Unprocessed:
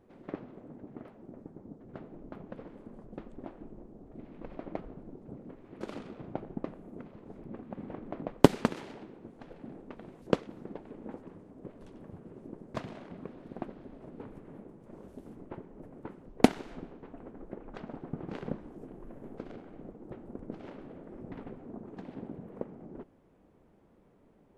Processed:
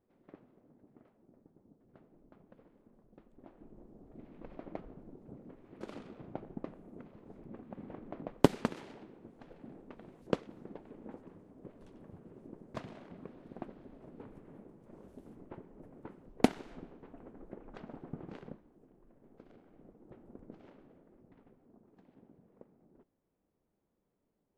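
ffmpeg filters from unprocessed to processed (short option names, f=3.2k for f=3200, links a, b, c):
-af "volume=2.5dB,afade=t=in:st=3.31:d=0.63:silence=0.298538,afade=t=out:st=18.17:d=0.46:silence=0.266073,afade=t=in:st=19.19:d=1.16:silence=0.421697,afade=t=out:st=20.35:d=0.95:silence=0.334965"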